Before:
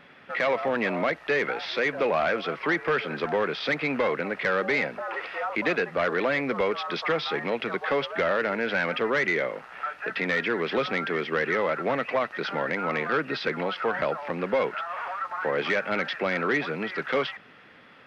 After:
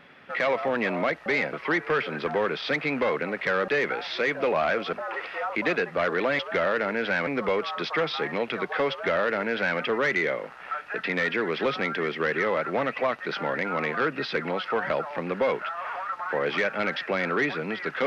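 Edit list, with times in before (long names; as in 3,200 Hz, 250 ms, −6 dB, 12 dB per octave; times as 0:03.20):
0:01.26–0:02.51: swap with 0:04.66–0:04.93
0:08.03–0:08.91: duplicate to 0:06.39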